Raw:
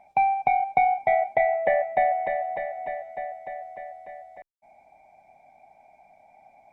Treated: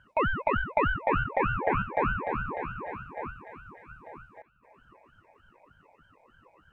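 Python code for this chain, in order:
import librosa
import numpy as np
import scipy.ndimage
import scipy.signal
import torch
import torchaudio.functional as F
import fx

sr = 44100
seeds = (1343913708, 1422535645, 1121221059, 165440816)

y = fx.peak_eq(x, sr, hz=fx.line((3.29, 220.0), (3.88, 530.0)), db=-12.0, octaves=2.9, at=(3.29, 3.88), fade=0.02)
y = fx.echo_stepped(y, sr, ms=392, hz=220.0, octaves=1.4, feedback_pct=70, wet_db=-11.0)
y = fx.ring_lfo(y, sr, carrier_hz=440.0, swing_pct=80, hz=3.3)
y = y * librosa.db_to_amplitude(-2.0)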